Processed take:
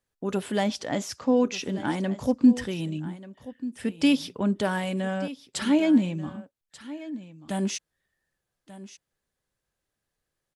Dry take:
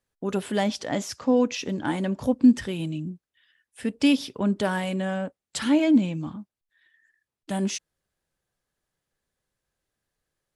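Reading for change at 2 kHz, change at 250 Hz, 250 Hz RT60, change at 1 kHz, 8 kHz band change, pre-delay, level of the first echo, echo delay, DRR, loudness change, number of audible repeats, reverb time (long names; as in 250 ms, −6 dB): −1.0 dB, −1.0 dB, no reverb audible, −1.0 dB, −1.0 dB, no reverb audible, −16.0 dB, 1,187 ms, no reverb audible, −1.0 dB, 1, no reverb audible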